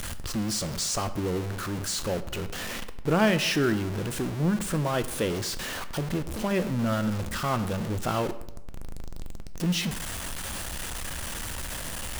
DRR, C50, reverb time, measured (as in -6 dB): 10.5 dB, 14.0 dB, 0.85 s